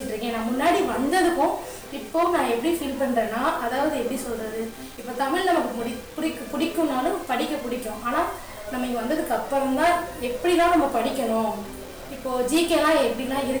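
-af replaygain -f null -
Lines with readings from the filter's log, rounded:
track_gain = +3.9 dB
track_peak = 0.152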